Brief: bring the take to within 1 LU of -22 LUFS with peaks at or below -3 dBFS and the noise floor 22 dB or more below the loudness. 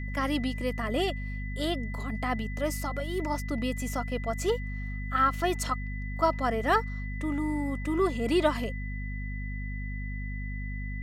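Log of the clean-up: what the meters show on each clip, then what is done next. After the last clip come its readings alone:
hum 50 Hz; harmonics up to 250 Hz; hum level -32 dBFS; steady tone 2000 Hz; tone level -42 dBFS; loudness -30.5 LUFS; peak -11.0 dBFS; loudness target -22.0 LUFS
-> de-hum 50 Hz, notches 5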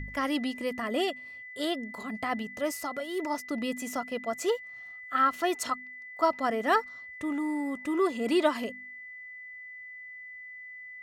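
hum none; steady tone 2000 Hz; tone level -42 dBFS
-> notch 2000 Hz, Q 30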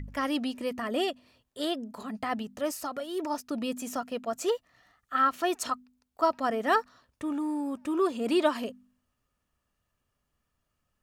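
steady tone none; loudness -30.5 LUFS; peak -12.0 dBFS; loudness target -22.0 LUFS
-> gain +8.5 dB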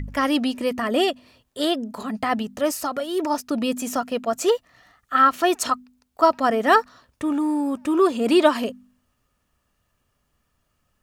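loudness -22.0 LUFS; peak -3.5 dBFS; noise floor -72 dBFS

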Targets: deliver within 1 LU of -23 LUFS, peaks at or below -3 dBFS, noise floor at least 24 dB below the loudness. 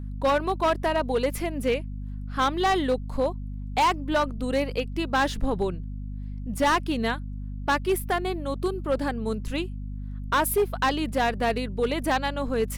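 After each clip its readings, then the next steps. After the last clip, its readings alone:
clipped 1.5%; flat tops at -17.0 dBFS; hum 50 Hz; harmonics up to 250 Hz; hum level -31 dBFS; loudness -26.5 LUFS; peak -17.0 dBFS; loudness target -23.0 LUFS
-> clip repair -17 dBFS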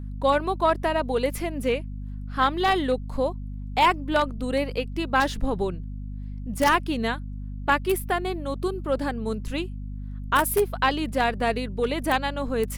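clipped 0.0%; hum 50 Hz; harmonics up to 250 Hz; hum level -31 dBFS
-> notches 50/100/150/200/250 Hz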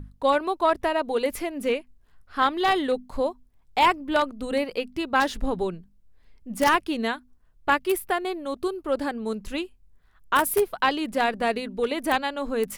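hum none; loudness -25.5 LUFS; peak -7.5 dBFS; loudness target -23.0 LUFS
-> gain +2.5 dB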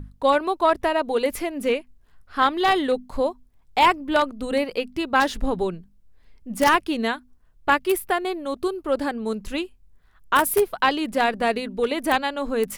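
loudness -23.0 LUFS; peak -5.0 dBFS; noise floor -57 dBFS

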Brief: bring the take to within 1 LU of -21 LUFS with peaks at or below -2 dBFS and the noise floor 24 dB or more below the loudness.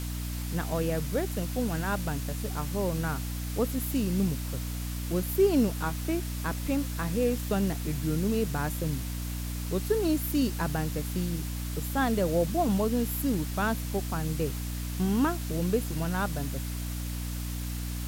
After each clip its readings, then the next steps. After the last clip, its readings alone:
hum 60 Hz; harmonics up to 300 Hz; hum level -31 dBFS; noise floor -34 dBFS; noise floor target -54 dBFS; loudness -30.0 LUFS; peak -13.0 dBFS; loudness target -21.0 LUFS
-> de-hum 60 Hz, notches 5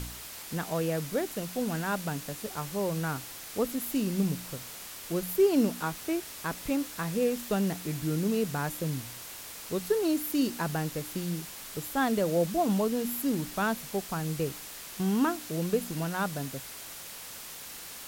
hum none; noise floor -44 dBFS; noise floor target -55 dBFS
-> denoiser 11 dB, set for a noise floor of -44 dBFS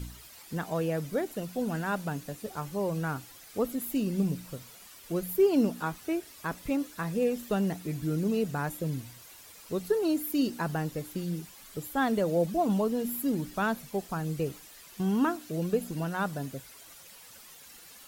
noise floor -51 dBFS; noise floor target -55 dBFS
-> denoiser 6 dB, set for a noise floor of -51 dBFS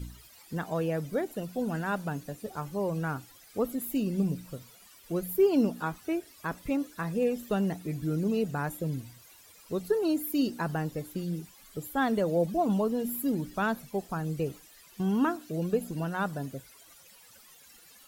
noise floor -56 dBFS; loudness -31.0 LUFS; peak -14.5 dBFS; loudness target -21.0 LUFS
-> gain +10 dB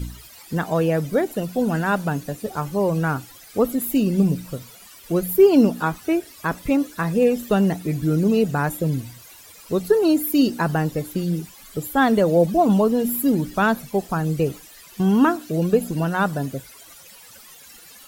loudness -21.0 LUFS; peak -4.5 dBFS; noise floor -46 dBFS

